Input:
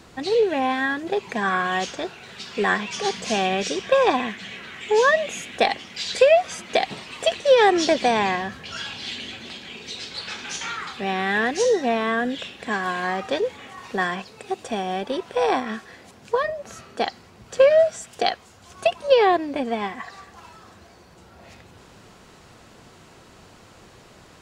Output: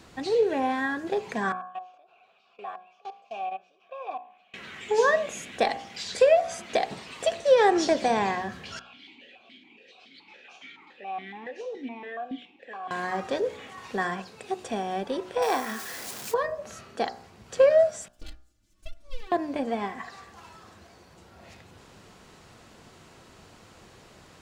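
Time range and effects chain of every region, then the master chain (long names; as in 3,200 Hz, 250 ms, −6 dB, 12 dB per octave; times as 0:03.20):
0:01.52–0:04.54: output level in coarse steps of 23 dB + formant filter a
0:08.79–0:12.91: double-tracking delay 16 ms −13 dB + formant filter that steps through the vowels 7.1 Hz
0:15.42–0:16.34: converter with a step at zero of −33.5 dBFS + spectral tilt +2.5 dB per octave
0:18.08–0:19.32: lower of the sound and its delayed copy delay 6.4 ms + guitar amp tone stack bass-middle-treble 10-0-1 + comb filter 3.4 ms, depth 90%
whole clip: dynamic equaliser 3,000 Hz, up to −7 dB, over −40 dBFS, Q 1.2; hum removal 61.03 Hz, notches 28; level −3 dB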